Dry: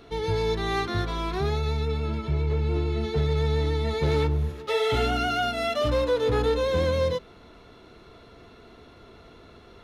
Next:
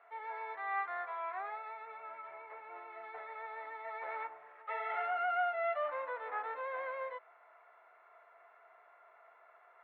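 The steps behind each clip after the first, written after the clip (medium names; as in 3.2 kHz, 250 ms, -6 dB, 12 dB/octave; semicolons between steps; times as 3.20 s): Chebyshev band-pass 660–2100 Hz, order 3; trim -5.5 dB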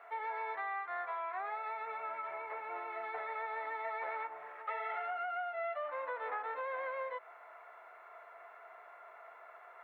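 compression 16:1, threshold -43 dBFS, peak gain reduction 15 dB; trim +7.5 dB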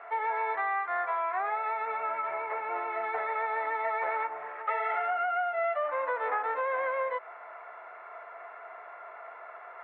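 low-pass 2.8 kHz 12 dB/octave; trim +9 dB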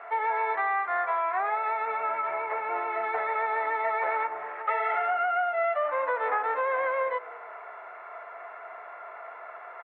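frequency-shifting echo 191 ms, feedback 55%, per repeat -30 Hz, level -22 dB; trim +3 dB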